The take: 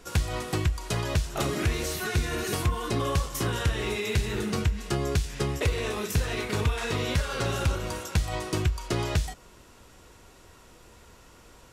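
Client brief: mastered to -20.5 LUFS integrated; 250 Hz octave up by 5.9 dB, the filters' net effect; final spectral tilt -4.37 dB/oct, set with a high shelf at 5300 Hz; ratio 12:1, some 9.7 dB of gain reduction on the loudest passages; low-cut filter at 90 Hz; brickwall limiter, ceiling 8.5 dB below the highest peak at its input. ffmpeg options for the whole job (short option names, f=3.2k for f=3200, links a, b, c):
-af "highpass=90,equalizer=f=250:t=o:g=8.5,highshelf=f=5.3k:g=4,acompressor=threshold=-30dB:ratio=12,volume=15.5dB,alimiter=limit=-10dB:level=0:latency=1"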